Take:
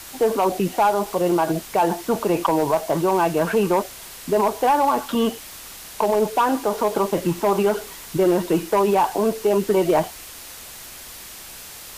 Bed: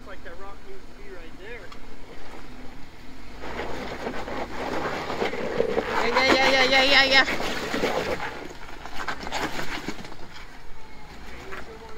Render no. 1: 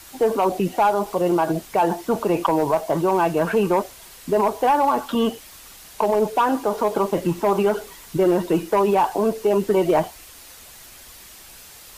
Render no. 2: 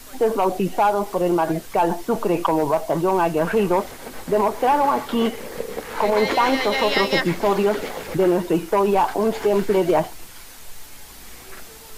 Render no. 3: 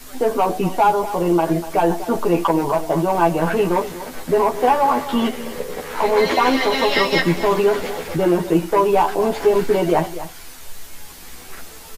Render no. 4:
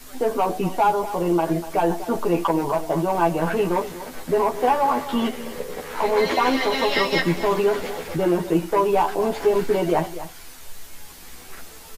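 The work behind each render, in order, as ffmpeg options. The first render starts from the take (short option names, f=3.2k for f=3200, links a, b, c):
-af "afftdn=nr=6:nf=-39"
-filter_complex "[1:a]volume=-5.5dB[a];[0:a][a]amix=inputs=2:normalize=0"
-filter_complex "[0:a]asplit=2[a][b];[b]adelay=12,volume=-2dB[c];[a][c]amix=inputs=2:normalize=0,aecho=1:1:244:0.2"
-af "volume=-3.5dB"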